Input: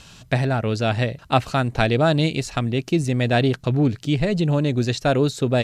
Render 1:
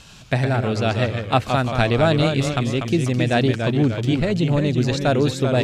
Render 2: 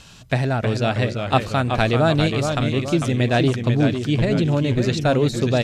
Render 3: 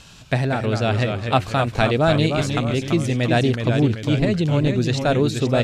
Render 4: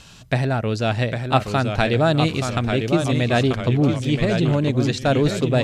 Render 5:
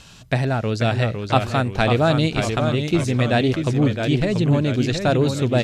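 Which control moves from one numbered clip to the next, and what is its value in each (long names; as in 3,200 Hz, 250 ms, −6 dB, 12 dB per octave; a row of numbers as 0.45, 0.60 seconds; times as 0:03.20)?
delay with pitch and tempo change per echo, delay time: 90, 297, 183, 785, 468 milliseconds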